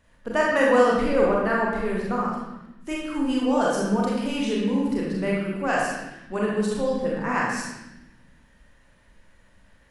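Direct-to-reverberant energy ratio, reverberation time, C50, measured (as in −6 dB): −4.5 dB, 0.95 s, 0.0 dB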